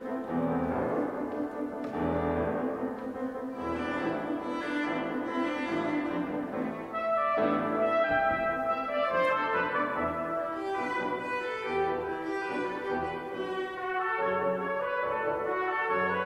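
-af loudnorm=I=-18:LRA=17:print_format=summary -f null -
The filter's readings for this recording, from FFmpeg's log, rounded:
Input Integrated:    -30.7 LUFS
Input True Peak:     -15.3 dBTP
Input LRA:             3.3 LU
Input Threshold:     -40.7 LUFS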